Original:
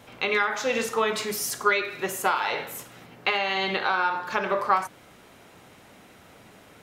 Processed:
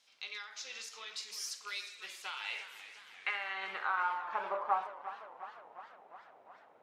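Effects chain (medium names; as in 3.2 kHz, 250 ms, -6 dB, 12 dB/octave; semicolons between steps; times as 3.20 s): rattle on loud lows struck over -40 dBFS, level -26 dBFS; band-pass sweep 5 kHz -> 790 Hz, 1.55–4.63 s; modulated delay 352 ms, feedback 67%, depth 145 cents, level -13 dB; trim -5.5 dB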